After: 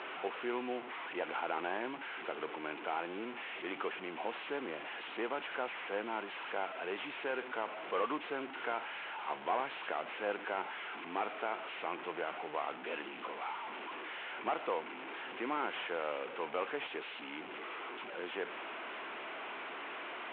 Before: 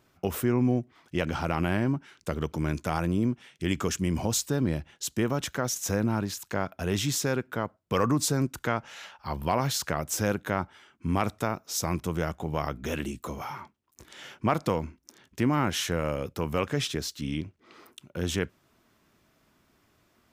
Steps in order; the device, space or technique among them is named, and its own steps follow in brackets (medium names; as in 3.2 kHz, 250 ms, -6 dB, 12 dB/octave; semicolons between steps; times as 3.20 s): digital answering machine (band-pass 350–3300 Hz; one-bit delta coder 16 kbps, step -33 dBFS; cabinet simulation 460–3900 Hz, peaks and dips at 580 Hz -5 dB, 1.2 kHz -3 dB, 1.8 kHz -4 dB); trim -1.5 dB